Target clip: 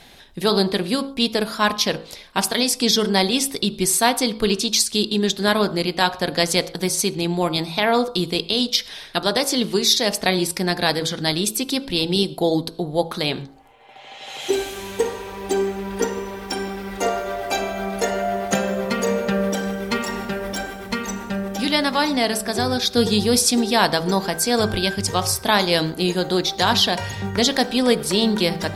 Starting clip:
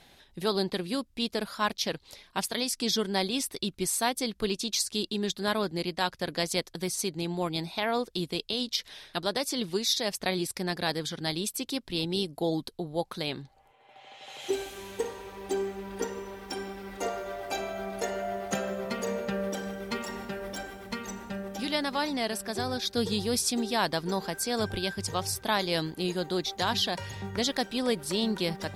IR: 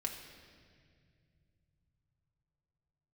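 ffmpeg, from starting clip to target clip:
-filter_complex "[0:a]bandreject=f=54.83:t=h:w=4,bandreject=f=109.66:t=h:w=4,bandreject=f=164.49:t=h:w=4,bandreject=f=219.32:t=h:w=4,bandreject=f=274.15:t=h:w=4,bandreject=f=328.98:t=h:w=4,bandreject=f=383.81:t=h:w=4,bandreject=f=438.64:t=h:w=4,bandreject=f=493.47:t=h:w=4,bandreject=f=548.3:t=h:w=4,bandreject=f=603.13:t=h:w=4,bandreject=f=657.96:t=h:w=4,bandreject=f=712.79:t=h:w=4,bandreject=f=767.62:t=h:w=4,bandreject=f=822.45:t=h:w=4,bandreject=f=877.28:t=h:w=4,bandreject=f=932.11:t=h:w=4,bandreject=f=986.94:t=h:w=4,bandreject=f=1.04177k:t=h:w=4,bandreject=f=1.0966k:t=h:w=4,bandreject=f=1.15143k:t=h:w=4,bandreject=f=1.20626k:t=h:w=4,bandreject=f=1.26109k:t=h:w=4,bandreject=f=1.31592k:t=h:w=4,bandreject=f=1.37075k:t=h:w=4,bandreject=f=1.42558k:t=h:w=4,bandreject=f=1.48041k:t=h:w=4,bandreject=f=1.53524k:t=h:w=4,asplit=2[a][b];[1:a]atrim=start_sample=2205,atrim=end_sample=6174[c];[b][c]afir=irnorm=-1:irlink=0,volume=-10.5dB[d];[a][d]amix=inputs=2:normalize=0,volume=8.5dB"

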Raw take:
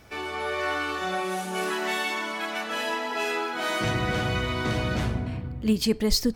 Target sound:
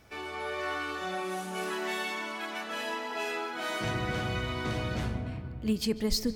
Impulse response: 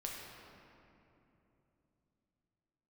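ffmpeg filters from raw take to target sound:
-filter_complex "[0:a]asplit=2[a][b];[1:a]atrim=start_sample=2205,highshelf=f=6.4k:g=-10.5,adelay=145[c];[b][c]afir=irnorm=-1:irlink=0,volume=-14dB[d];[a][d]amix=inputs=2:normalize=0,volume=-6dB"

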